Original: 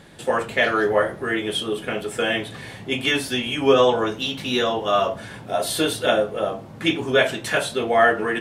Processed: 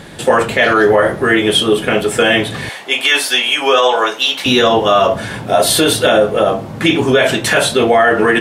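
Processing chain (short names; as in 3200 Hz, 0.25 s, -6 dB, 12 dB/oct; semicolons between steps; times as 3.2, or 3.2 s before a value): 2.69–4.46 HPF 680 Hz 12 dB/oct; maximiser +14 dB; gain -1 dB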